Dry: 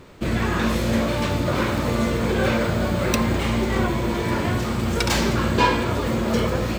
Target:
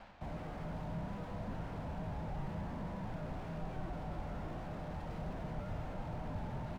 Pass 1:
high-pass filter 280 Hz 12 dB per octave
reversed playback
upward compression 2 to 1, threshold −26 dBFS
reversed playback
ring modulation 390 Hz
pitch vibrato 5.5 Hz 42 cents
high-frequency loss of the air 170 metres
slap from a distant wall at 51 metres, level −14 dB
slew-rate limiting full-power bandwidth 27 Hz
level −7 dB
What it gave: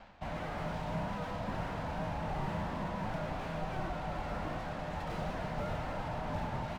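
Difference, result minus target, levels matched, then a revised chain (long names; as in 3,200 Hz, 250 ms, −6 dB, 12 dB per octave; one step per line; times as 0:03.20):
slew-rate limiting: distortion −6 dB
high-pass filter 280 Hz 12 dB per octave
reversed playback
upward compression 2 to 1, threshold −26 dBFS
reversed playback
ring modulation 390 Hz
pitch vibrato 5.5 Hz 42 cents
high-frequency loss of the air 170 metres
slap from a distant wall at 51 metres, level −14 dB
slew-rate limiting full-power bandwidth 8.5 Hz
level −7 dB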